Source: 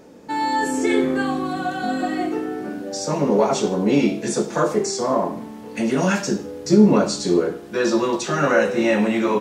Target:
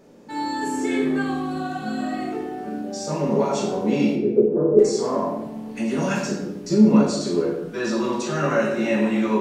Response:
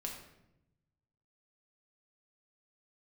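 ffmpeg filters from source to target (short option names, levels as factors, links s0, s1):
-filter_complex "[0:a]asettb=1/sr,asplit=3[s0][s1][s2];[s0]atrim=end=4.154[s3];[s1]atrim=start=4.15:end=4.79,asetpts=PTS-STARTPTS,afade=t=in:d=0.004:c=qsin,afade=t=out:st=0.636:d=0.004:c=qsin,lowpass=f=410:t=q:w=4.9[s4];[s2]atrim=start=4.786[s5];[s3][s4]acrossfade=d=0.004:c1=hsin:c2=qsin[s6];[s6][s5]acrossfade=d=0.004:c1=qsin:c2=hsin[s7];[1:a]atrim=start_sample=2205[s8];[s7][s8]afir=irnorm=-1:irlink=0,volume=0.708"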